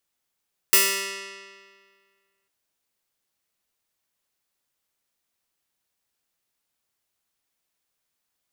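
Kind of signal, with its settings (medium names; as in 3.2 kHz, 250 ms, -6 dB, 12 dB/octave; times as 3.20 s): plucked string G3, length 1.75 s, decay 1.88 s, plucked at 0.25, bright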